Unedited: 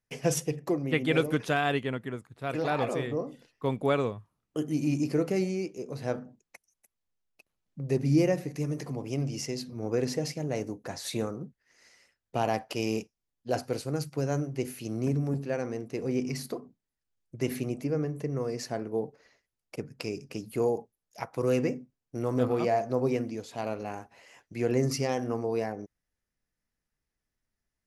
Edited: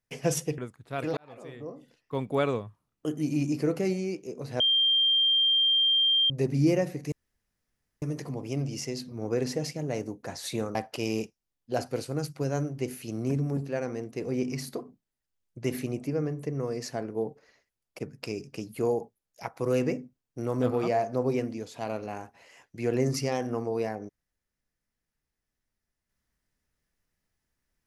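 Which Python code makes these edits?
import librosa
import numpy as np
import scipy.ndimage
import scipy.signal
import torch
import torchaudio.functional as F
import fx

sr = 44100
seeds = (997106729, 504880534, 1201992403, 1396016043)

y = fx.edit(x, sr, fx.cut(start_s=0.58, length_s=1.51),
    fx.fade_in_span(start_s=2.68, length_s=1.27),
    fx.bleep(start_s=6.11, length_s=1.7, hz=3180.0, db=-20.0),
    fx.insert_room_tone(at_s=8.63, length_s=0.9),
    fx.cut(start_s=11.36, length_s=1.16), tone=tone)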